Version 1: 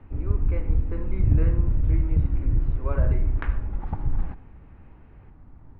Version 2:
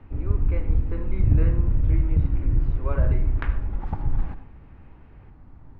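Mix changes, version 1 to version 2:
background: send +7.5 dB
master: remove high-frequency loss of the air 170 metres

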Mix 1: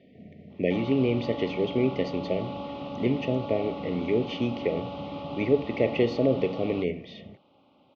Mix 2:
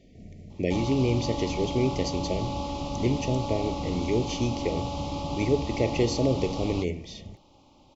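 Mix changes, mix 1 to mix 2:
speech −4.0 dB
master: remove loudspeaker in its box 190–3,100 Hz, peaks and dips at 330 Hz −6 dB, 920 Hz −8 dB, 1,500 Hz +6 dB, 2,300 Hz −3 dB

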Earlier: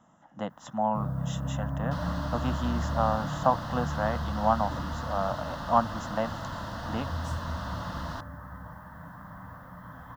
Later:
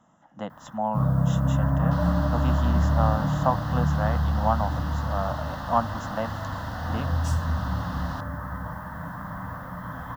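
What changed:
first sound +9.5 dB
second sound: remove Butterworth band-reject 780 Hz, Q 7.8

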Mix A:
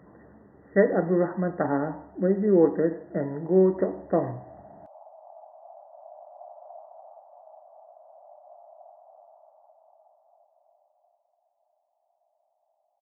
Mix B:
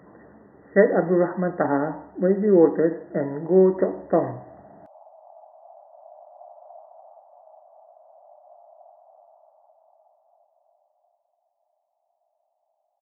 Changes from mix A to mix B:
speech +4.5 dB
master: add low-shelf EQ 130 Hz −9 dB

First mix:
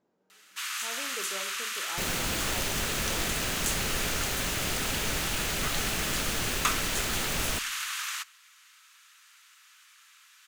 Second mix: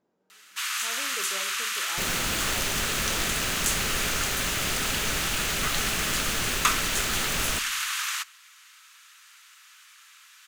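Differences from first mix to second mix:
first sound +4.5 dB
second sound: send +6.0 dB

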